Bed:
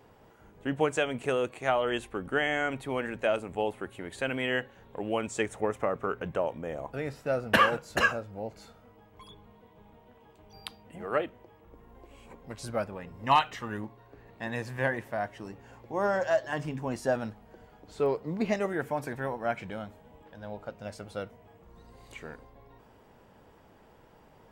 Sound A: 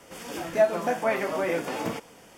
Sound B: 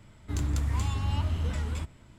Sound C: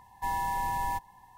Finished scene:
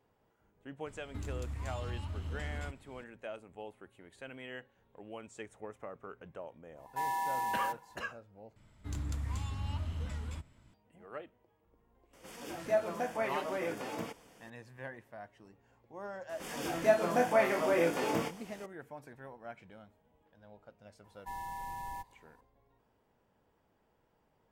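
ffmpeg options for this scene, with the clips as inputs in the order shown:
ffmpeg -i bed.wav -i cue0.wav -i cue1.wav -i cue2.wav -filter_complex "[2:a]asplit=2[link_01][link_02];[3:a]asplit=2[link_03][link_04];[1:a]asplit=2[link_05][link_06];[0:a]volume=-16dB[link_07];[link_01]alimiter=level_in=5.5dB:limit=-24dB:level=0:latency=1:release=348,volume=-5.5dB[link_08];[link_03]highpass=frequency=260:width=0.5412,highpass=frequency=260:width=1.3066[link_09];[link_02]equalizer=frequency=370:width_type=o:width=0.28:gain=-4[link_10];[link_06]asplit=2[link_11][link_12];[link_12]adelay=24,volume=-5dB[link_13];[link_11][link_13]amix=inputs=2:normalize=0[link_14];[link_07]asplit=2[link_15][link_16];[link_15]atrim=end=8.564[link_17];[link_10]atrim=end=2.18,asetpts=PTS-STARTPTS,volume=-8.5dB[link_18];[link_16]atrim=start=10.736[link_19];[link_08]atrim=end=2.18,asetpts=PTS-STARTPTS,volume=-2.5dB,afade=type=in:duration=0.004:curve=hsin,afade=type=out:start_time=2.176:duration=0.004:curve=hsin,adelay=860[link_20];[link_09]atrim=end=1.37,asetpts=PTS-STARTPTS,volume=-3dB,afade=type=in:duration=0.1,afade=type=out:start_time=1.27:duration=0.1,adelay=297234S[link_21];[link_05]atrim=end=2.37,asetpts=PTS-STARTPTS,volume=-9dB,afade=type=in:duration=0.004:curve=hsin,afade=type=out:start_time=2.366:duration=0.004:curve=hsin,adelay=12130[link_22];[link_14]atrim=end=2.37,asetpts=PTS-STARTPTS,volume=-3.5dB,afade=type=in:duration=0.004:curve=hsin,afade=type=out:start_time=2.366:duration=0.004:curve=hsin,adelay=16290[link_23];[link_04]atrim=end=1.37,asetpts=PTS-STARTPTS,volume=-11dB,afade=type=in:duration=0.004:curve=hsin,afade=type=out:start_time=1.366:duration=0.004:curve=hsin,adelay=21040[link_24];[link_17][link_18]acrossfade=duration=0.004:curve1=hsin:curve2=hsin[link_25];[link_25][link_19]acrossfade=duration=0.004:curve1=hsin:curve2=hsin[link_26];[link_26][link_20][link_21][link_22][link_23][link_24]amix=inputs=6:normalize=0" out.wav

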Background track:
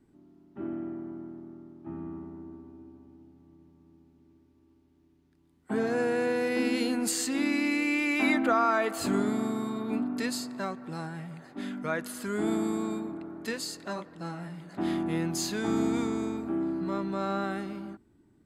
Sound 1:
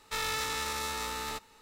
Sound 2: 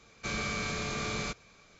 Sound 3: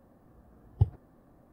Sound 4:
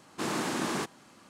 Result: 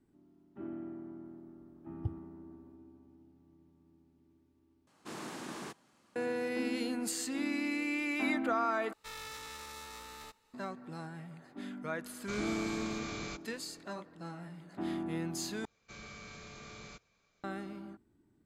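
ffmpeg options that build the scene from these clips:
ffmpeg -i bed.wav -i cue0.wav -i cue1.wav -i cue2.wav -i cue3.wav -filter_complex "[2:a]asplit=2[link_01][link_02];[0:a]volume=-7dB,asplit=4[link_03][link_04][link_05][link_06];[link_03]atrim=end=4.874[link_07];[4:a]atrim=end=1.29,asetpts=PTS-STARTPTS,volume=-12dB[link_08];[link_04]atrim=start=6.156:end=8.934[link_09];[1:a]atrim=end=1.61,asetpts=PTS-STARTPTS,volume=-12.5dB[link_10];[link_05]atrim=start=10.536:end=15.654[link_11];[link_02]atrim=end=1.79,asetpts=PTS-STARTPTS,volume=-15.5dB[link_12];[link_06]atrim=start=17.436[link_13];[3:a]atrim=end=1.52,asetpts=PTS-STARTPTS,volume=-12.5dB,afade=type=in:duration=0.004:curve=hsin,afade=type=out:start_time=1.516:duration=0.004:curve=hsin,adelay=1240[link_14];[link_01]atrim=end=1.79,asetpts=PTS-STARTPTS,volume=-7.5dB,afade=type=in:duration=0.004:curve=hsin,afade=type=out:start_time=1.786:duration=0.004:curve=hsin,adelay=12040[link_15];[link_07][link_08]acrossfade=duration=0.004:curve1=hsin:curve2=hsin[link_16];[link_16][link_09]acrossfade=duration=0.004:curve1=hsin:curve2=hsin[link_17];[link_17][link_10]acrossfade=duration=0.004:curve1=hsin:curve2=hsin[link_18];[link_18][link_11]acrossfade=duration=0.004:curve1=hsin:curve2=hsin[link_19];[link_19][link_12]acrossfade=duration=0.004:curve1=hsin:curve2=hsin[link_20];[link_20][link_13]acrossfade=duration=0.004:curve1=hsin:curve2=hsin[link_21];[link_21][link_14][link_15]amix=inputs=3:normalize=0" out.wav

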